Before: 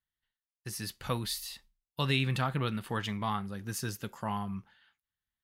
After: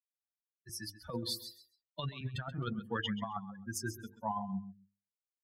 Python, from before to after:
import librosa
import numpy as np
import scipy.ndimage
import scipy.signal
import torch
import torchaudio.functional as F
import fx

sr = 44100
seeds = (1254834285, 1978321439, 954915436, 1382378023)

p1 = fx.bin_expand(x, sr, power=3.0)
p2 = scipy.signal.sosfilt(scipy.signal.butter(2, 110.0, 'highpass', fs=sr, output='sos'), p1)
p3 = fx.high_shelf(p2, sr, hz=6600.0, db=-10.5)
p4 = fx.hum_notches(p3, sr, base_hz=50, count=10)
p5 = fx.over_compress(p4, sr, threshold_db=-41.0, ratio=-0.5)
p6 = p5 + fx.echo_feedback(p5, sr, ms=132, feedback_pct=18, wet_db=-14.5, dry=0)
p7 = fx.band_squash(p6, sr, depth_pct=40, at=(0.69, 2.21))
y = p7 * 10.0 ** (5.0 / 20.0)